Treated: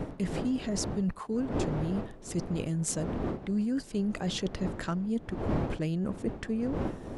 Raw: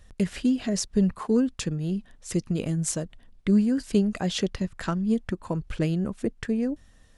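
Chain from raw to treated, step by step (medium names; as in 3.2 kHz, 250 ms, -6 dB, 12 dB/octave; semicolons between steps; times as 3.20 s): wind noise 380 Hz -28 dBFS; reverse; compression 5:1, threshold -31 dBFS, peak gain reduction 18.5 dB; reverse; trim +2.5 dB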